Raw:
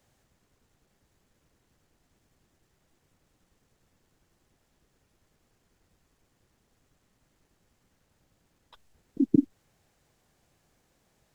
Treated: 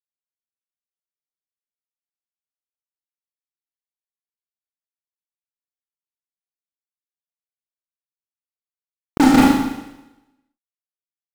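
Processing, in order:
fuzz pedal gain 39 dB, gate −38 dBFS
bit reduction 6 bits
four-comb reverb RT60 0.96 s, combs from 27 ms, DRR −4.5 dB
level +3 dB

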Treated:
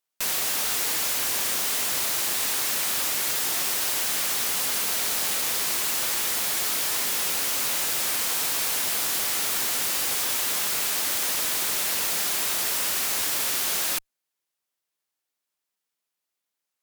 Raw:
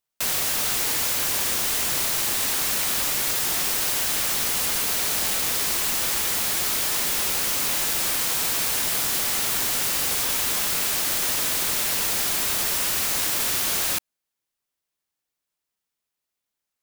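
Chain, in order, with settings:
high-pass filter 270 Hz 6 dB per octave
asymmetric clip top −25 dBFS

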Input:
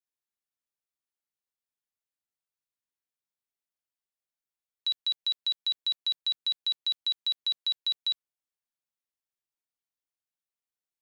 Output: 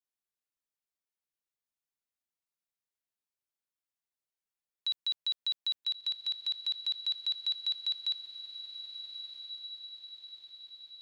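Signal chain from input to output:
feedback delay with all-pass diffusion 1,333 ms, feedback 56%, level −10 dB
level −3.5 dB

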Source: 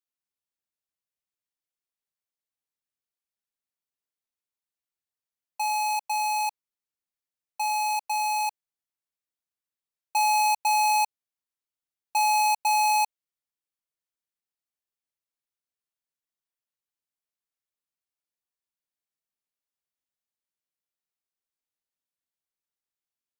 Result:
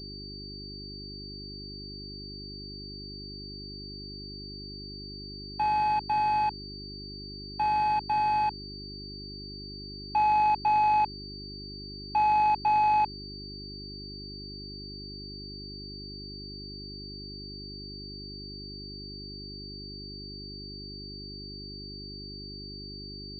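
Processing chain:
leveller curve on the samples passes 1
hum with harmonics 50 Hz, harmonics 8, −44 dBFS −2 dB per octave
switching amplifier with a slow clock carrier 4,600 Hz

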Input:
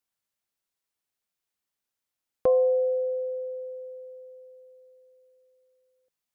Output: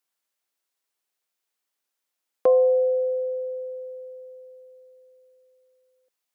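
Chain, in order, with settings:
high-pass filter 310 Hz
level +4 dB

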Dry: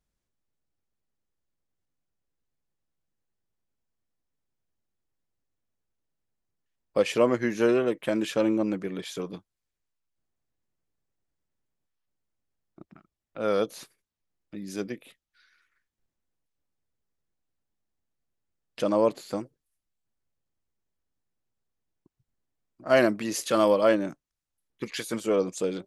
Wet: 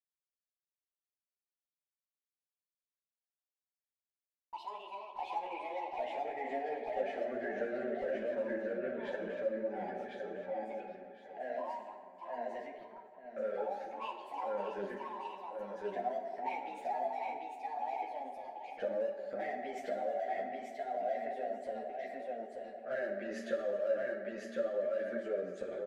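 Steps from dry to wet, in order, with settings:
pair of resonant band-passes 970 Hz, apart 1.5 octaves
noise gate with hold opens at −54 dBFS
spectral tilt −2 dB per octave
comb filter 5.1 ms, depth 46%
repeating echo 1,056 ms, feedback 23%, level −4 dB
transient designer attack +2 dB, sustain +7 dB
in parallel at −8.5 dB: gain into a clipping stage and back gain 26 dB
on the sum: delay with pitch and tempo change per echo 129 ms, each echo +3 semitones, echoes 3, each echo −6 dB
downward compressor 4 to 1, threshold −35 dBFS, peak gain reduction 17.5 dB
convolution reverb RT60 2.0 s, pre-delay 4 ms, DRR 3 dB
string-ensemble chorus
level +1 dB

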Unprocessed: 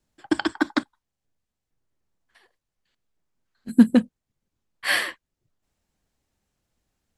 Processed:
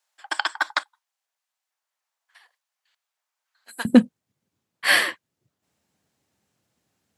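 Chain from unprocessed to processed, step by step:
high-pass filter 750 Hz 24 dB per octave, from 0:03.85 98 Hz
level +4.5 dB

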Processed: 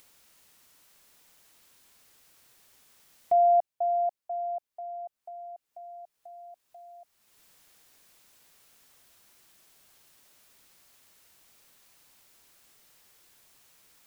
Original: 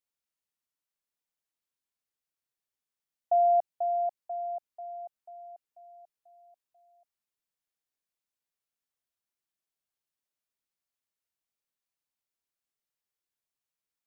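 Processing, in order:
upward compression, threshold −40 dBFS
level +2 dB

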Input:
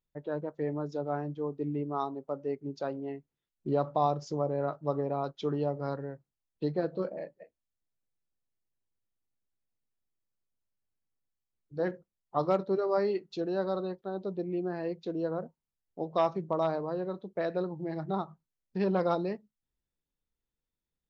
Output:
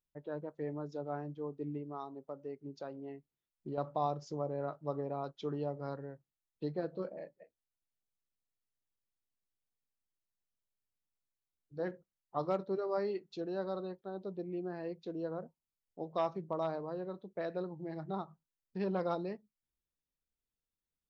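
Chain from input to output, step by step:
0:01.77–0:03.78: downward compressor 2 to 1, threshold −35 dBFS, peak gain reduction 6.5 dB
level −6.5 dB

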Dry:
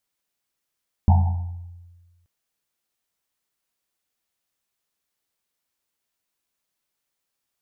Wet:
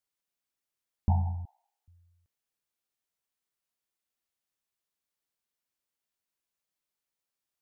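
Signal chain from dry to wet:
0:01.45–0:01.88: Butterworth high-pass 350 Hz 96 dB per octave
level −8.5 dB

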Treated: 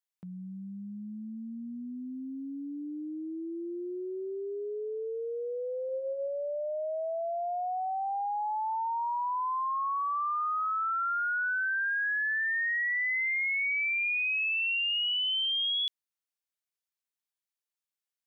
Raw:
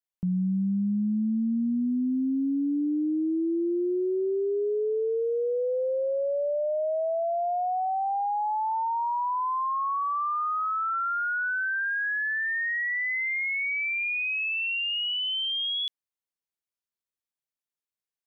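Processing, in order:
high-pass filter 1,100 Hz 6 dB per octave
0:05.82–0:06.28: flutter between parallel walls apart 11.8 metres, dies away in 0.33 s

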